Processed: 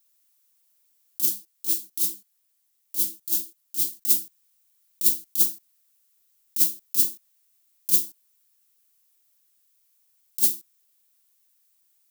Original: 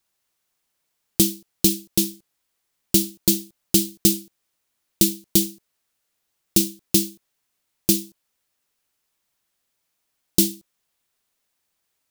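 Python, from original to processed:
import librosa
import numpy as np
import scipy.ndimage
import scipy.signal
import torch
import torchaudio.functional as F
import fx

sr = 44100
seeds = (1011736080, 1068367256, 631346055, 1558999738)

y = fx.riaa(x, sr, side='recording')
y = fx.over_compress(y, sr, threshold_db=-7.0, ratio=-0.5)
y = fx.chorus_voices(y, sr, voices=4, hz=1.1, base_ms=21, depth_ms=3.2, mix_pct=50, at=(1.25, 4.02))
y = y * librosa.db_to_amplitude(-11.0)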